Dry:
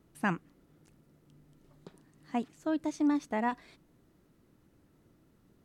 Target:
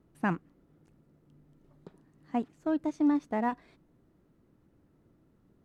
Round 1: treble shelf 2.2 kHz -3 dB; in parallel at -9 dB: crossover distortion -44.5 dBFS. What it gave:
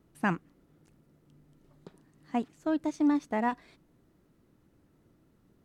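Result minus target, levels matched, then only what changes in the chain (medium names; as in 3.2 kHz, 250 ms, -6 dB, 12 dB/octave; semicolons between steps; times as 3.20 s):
4 kHz band +5.0 dB
change: treble shelf 2.2 kHz -11 dB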